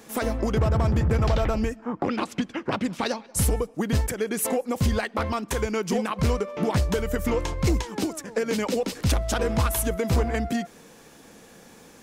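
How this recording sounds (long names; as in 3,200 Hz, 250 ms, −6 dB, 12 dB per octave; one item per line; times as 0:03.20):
background noise floor −50 dBFS
spectral slope −5.5 dB per octave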